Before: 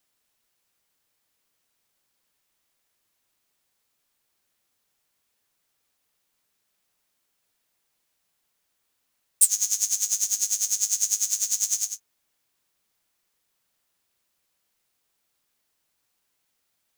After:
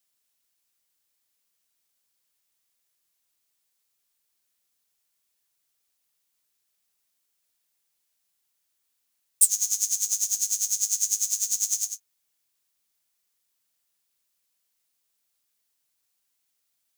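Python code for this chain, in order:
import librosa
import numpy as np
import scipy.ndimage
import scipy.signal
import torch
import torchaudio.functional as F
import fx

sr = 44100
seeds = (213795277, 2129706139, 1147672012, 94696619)

y = fx.high_shelf(x, sr, hz=2900.0, db=10.0)
y = y * librosa.db_to_amplitude(-9.5)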